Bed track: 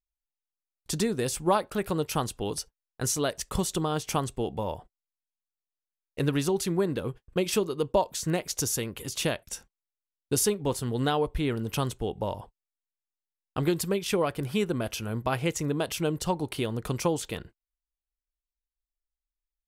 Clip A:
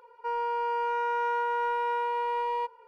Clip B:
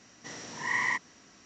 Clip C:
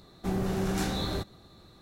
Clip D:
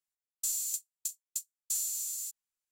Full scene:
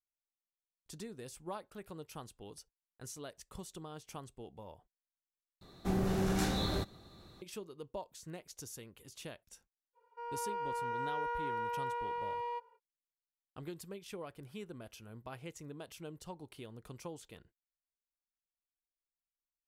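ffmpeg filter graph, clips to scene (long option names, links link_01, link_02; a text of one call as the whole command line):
ffmpeg -i bed.wav -i cue0.wav -i cue1.wav -i cue2.wav -filter_complex "[0:a]volume=-19dB[link_01];[1:a]dynaudnorm=framelen=250:gausssize=3:maxgain=6.5dB[link_02];[link_01]asplit=2[link_03][link_04];[link_03]atrim=end=5.614[link_05];[3:a]atrim=end=1.81,asetpts=PTS-STARTPTS,volume=-2.5dB[link_06];[link_04]atrim=start=7.416[link_07];[link_02]atrim=end=2.87,asetpts=PTS-STARTPTS,volume=-15.5dB,afade=type=in:duration=0.05,afade=type=out:start_time=2.82:duration=0.05,adelay=9930[link_08];[link_05][link_06]acrossfade=duration=0.004:curve1=hsin:curve2=hsin[link_09];[link_09][link_07]acrossfade=duration=0.004:curve1=hsin:curve2=hsin[link_10];[link_10][link_08]amix=inputs=2:normalize=0" out.wav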